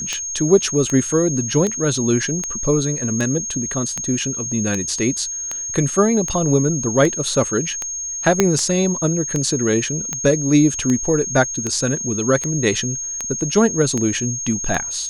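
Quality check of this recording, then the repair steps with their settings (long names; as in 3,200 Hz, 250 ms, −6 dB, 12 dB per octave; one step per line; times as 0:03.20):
scratch tick 78 rpm −9 dBFS
whistle 6,500 Hz −24 dBFS
0:08.40: click 0 dBFS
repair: click removal
notch filter 6,500 Hz, Q 30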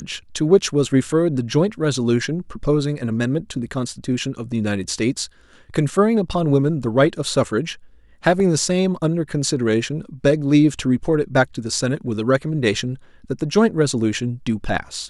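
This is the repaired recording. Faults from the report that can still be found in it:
0:08.40: click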